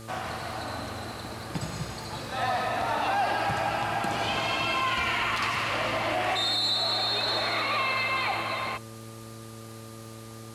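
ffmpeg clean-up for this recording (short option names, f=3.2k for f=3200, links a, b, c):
-af "adeclick=t=4,bandreject=f=112.4:t=h:w=4,bandreject=f=224.8:t=h:w=4,bandreject=f=337.2:t=h:w=4,bandreject=f=449.6:t=h:w=4,bandreject=f=562:t=h:w=4,bandreject=f=1.2k:w=30,afwtdn=0.0032"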